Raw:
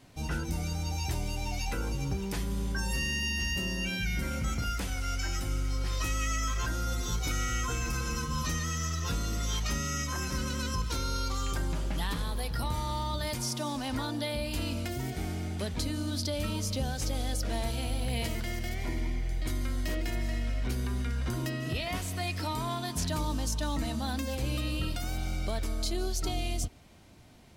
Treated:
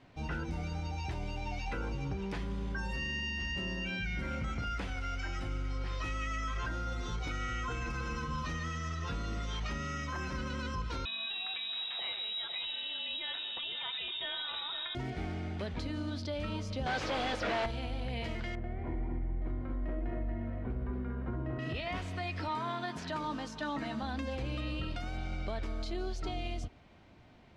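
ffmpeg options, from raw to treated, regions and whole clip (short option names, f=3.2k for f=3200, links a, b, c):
-filter_complex "[0:a]asettb=1/sr,asplit=3[a][b][c];[a]atrim=end=11.054[d];[b]atrim=start=11.05:end=14.95,asetpts=PTS-STARTPTS,afade=t=in:d=0.004:c=qsin,afade=t=out:st=3.896:d=0.004:c=qsin,aecho=1:1:508:0.398,atrim=end_sample=171990,lowpass=f=3.3k:t=q:w=0.5098,lowpass=f=3.3k:t=q:w=0.6013,lowpass=f=3.3k:t=q:w=0.9,lowpass=f=3.3k:t=q:w=2.563,afreqshift=-3900[e];[c]atrim=start=14.946[f];[d][e]acrossfade=d=0.004:c1=hsin:c2=qsin[g];[g][f]acrossfade=d=0.004:c1=qsin:c2=hsin,asettb=1/sr,asplit=3[h][i][j];[h]atrim=end=16.864[k];[i]atrim=start=16.86:end=17.66,asetpts=PTS-STARTPTS,afade=t=in:d=0.004:c=qsin,afade=t=out:st=0.796:d=0.004:c=qsin,highpass=49,asplit=2[l][m];[m]highpass=f=720:p=1,volume=27dB,asoftclip=type=tanh:threshold=-21dB[n];[l][n]amix=inputs=2:normalize=0,lowpass=f=3.1k:p=1,volume=-6dB,aeval=exprs='0.0447*(abs(mod(val(0)/0.0447+3,4)-2)-1)':c=same[o];[j]atrim=start=17.656[p];[k][o]acrossfade=d=0.004:c1=hsin:c2=qsin[q];[q][p]acrossfade=d=0.004:c1=qsin:c2=hsin,asettb=1/sr,asplit=3[r][s][t];[r]atrim=end=18.554[u];[s]atrim=start=18.55:end=21.59,asetpts=PTS-STARTPTS,afade=t=in:d=0.004:c=qsin,afade=t=out:st=3.036:d=0.004:c=qsin,lowpass=1k,aecho=1:1:234:0.596,atrim=end_sample=134064[v];[t]atrim=start=21.586[w];[u][v]acrossfade=d=0.004:c1=hsin:c2=qsin[x];[x][w]acrossfade=d=0.004:c1=qsin:c2=hsin,asettb=1/sr,asplit=3[y][z][aa];[y]atrim=end=22.484[ab];[z]atrim=start=22.48:end=24.03,asetpts=PTS-STARTPTS,afade=t=in:d=0.004:c=qsin,afade=t=out:st=1.546:d=0.004:c=qsin,highpass=160,equalizer=f=1.5k:t=o:w=0.73:g=4.5,asplit=2[ac][ad];[ad]adelay=14,volume=-11dB[ae];[ac][ae]amix=inputs=2:normalize=0,atrim=end_sample=68355[af];[aa]atrim=start=24.026[ag];[ab][af]acrossfade=d=0.004:c1=hsin:c2=qsin[ah];[ah][ag]acrossfade=d=0.004:c1=qsin:c2=hsin,alimiter=level_in=1dB:limit=-24dB:level=0:latency=1,volume=-1dB,lowpass=2.9k,lowshelf=f=340:g=-4"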